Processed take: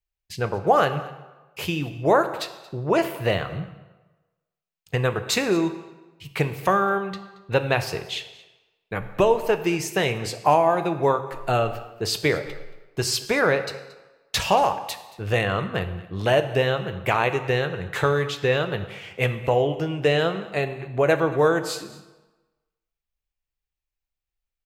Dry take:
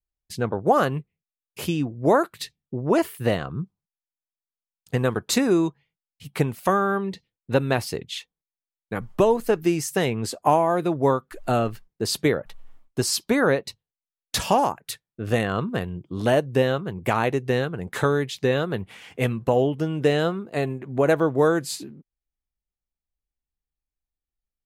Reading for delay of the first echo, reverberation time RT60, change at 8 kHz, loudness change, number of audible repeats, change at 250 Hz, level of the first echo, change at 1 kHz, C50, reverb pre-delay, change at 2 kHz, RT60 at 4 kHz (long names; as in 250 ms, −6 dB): 227 ms, 1.1 s, −1.5 dB, 0.0 dB, 1, −3.5 dB, −20.5 dB, +1.5 dB, 11.5 dB, 8 ms, +3.5 dB, 0.85 s